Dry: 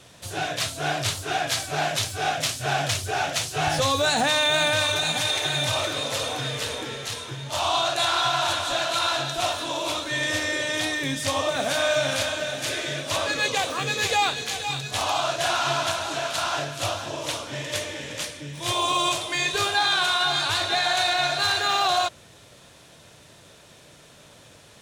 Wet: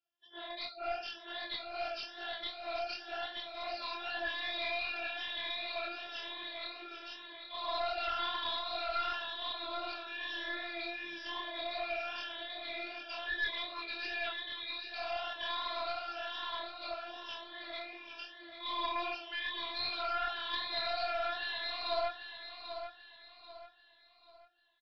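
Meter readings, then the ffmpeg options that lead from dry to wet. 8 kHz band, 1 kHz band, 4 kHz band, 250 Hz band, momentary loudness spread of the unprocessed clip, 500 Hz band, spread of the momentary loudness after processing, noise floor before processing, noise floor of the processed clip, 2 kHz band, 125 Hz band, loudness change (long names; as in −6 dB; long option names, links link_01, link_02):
below −40 dB, −13.5 dB, −14.0 dB, −18.0 dB, 8 LU, −13.5 dB, 10 LU, −51 dBFS, −61 dBFS, −13.0 dB, below −30 dB, −14.0 dB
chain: -af "afftfilt=real='re*pow(10,13/40*sin(2*PI*(1.1*log(max(b,1)*sr/1024/100)/log(2)-(0.99)*(pts-256)/sr)))':imag='im*pow(10,13/40*sin(2*PI*(1.1*log(max(b,1)*sr/1024/100)/log(2)-(0.99)*(pts-256)/sr)))':win_size=1024:overlap=0.75,highpass=frequency=200:width=0.5412,highpass=frequency=200:width=1.3066,bandreject=frequency=430:width=12,afftdn=noise_reduction=30:noise_floor=-36,lowshelf=frequency=480:gain=-9.5,afftfilt=real='hypot(re,im)*cos(PI*b)':imag='0':win_size=512:overlap=0.75,flanger=delay=22.5:depth=3.7:speed=2.6,aeval=exprs='(tanh(8.91*val(0)+0.45)-tanh(0.45))/8.91':channel_layout=same,aecho=1:1:790|1580|2370|3160:0.355|0.131|0.0486|0.018,aresample=11025,aresample=44100,volume=-5dB" -ar 16000 -c:a aac -b:a 64k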